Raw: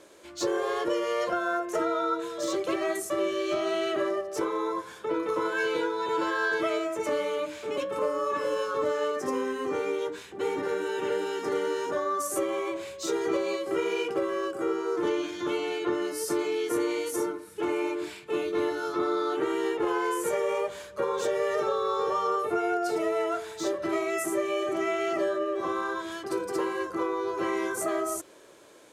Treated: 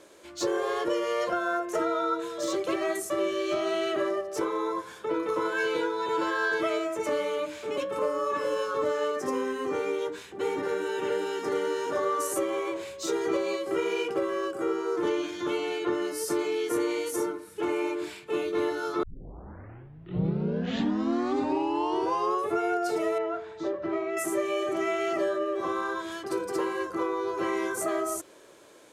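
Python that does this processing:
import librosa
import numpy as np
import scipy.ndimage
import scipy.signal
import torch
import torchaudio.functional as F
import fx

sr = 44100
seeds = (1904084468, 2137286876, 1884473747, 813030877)

y = fx.echo_throw(x, sr, start_s=11.35, length_s=0.47, ms=510, feedback_pct=25, wet_db=-6.5)
y = fx.spacing_loss(y, sr, db_at_10k=29, at=(23.18, 24.17))
y = fx.edit(y, sr, fx.tape_start(start_s=19.03, length_s=3.57), tone=tone)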